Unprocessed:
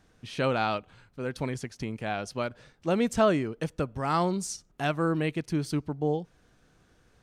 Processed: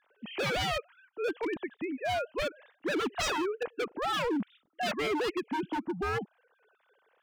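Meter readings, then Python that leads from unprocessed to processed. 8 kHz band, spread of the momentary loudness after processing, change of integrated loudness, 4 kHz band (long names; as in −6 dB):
−3.5 dB, 6 LU, −3.0 dB, +4.0 dB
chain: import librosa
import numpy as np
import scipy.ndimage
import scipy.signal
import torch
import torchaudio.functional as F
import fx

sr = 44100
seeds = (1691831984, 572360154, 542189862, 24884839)

y = fx.sine_speech(x, sr)
y = 10.0 ** (-27.5 / 20.0) * (np.abs((y / 10.0 ** (-27.5 / 20.0) + 3.0) % 4.0 - 2.0) - 1.0)
y = F.gain(torch.from_numpy(y), 2.0).numpy()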